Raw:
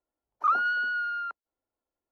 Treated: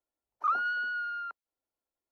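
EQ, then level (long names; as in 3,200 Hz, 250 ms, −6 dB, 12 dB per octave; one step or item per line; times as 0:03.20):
low-shelf EQ 370 Hz −3 dB
−4.0 dB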